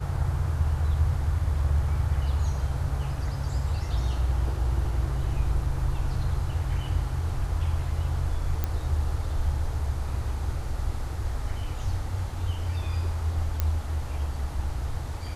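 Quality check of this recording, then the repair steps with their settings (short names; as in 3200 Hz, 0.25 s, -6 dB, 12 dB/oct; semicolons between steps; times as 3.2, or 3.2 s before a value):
8.64 pop -14 dBFS
13.6 pop -12 dBFS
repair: de-click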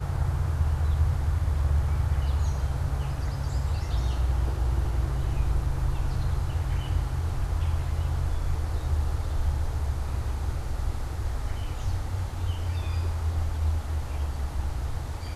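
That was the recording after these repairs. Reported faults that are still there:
none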